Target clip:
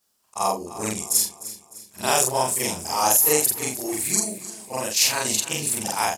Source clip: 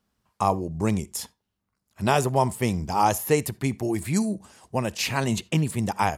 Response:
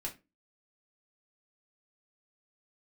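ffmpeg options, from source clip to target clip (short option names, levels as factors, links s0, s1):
-af "afftfilt=real='re':imag='-im':win_size=4096:overlap=0.75,bass=f=250:g=-14,treble=f=4000:g=15,aecho=1:1:303|606|909|1212:0.178|0.0782|0.0344|0.0151,volume=1.68"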